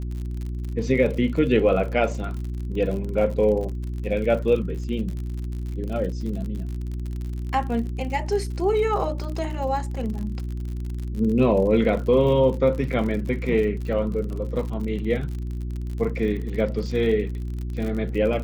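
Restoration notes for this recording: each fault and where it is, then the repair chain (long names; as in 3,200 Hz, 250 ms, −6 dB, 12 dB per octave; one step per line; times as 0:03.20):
surface crackle 53 per second −31 dBFS
mains hum 60 Hz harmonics 6 −29 dBFS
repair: click removal
hum removal 60 Hz, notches 6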